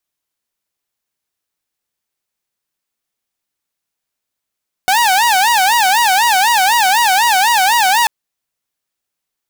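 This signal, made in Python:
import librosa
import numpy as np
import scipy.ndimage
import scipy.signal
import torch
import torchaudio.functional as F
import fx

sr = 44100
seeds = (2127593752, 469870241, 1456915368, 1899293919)

y = fx.siren(sr, length_s=3.19, kind='wail', low_hz=738.0, high_hz=960.0, per_s=4.0, wave='saw', level_db=-7.0)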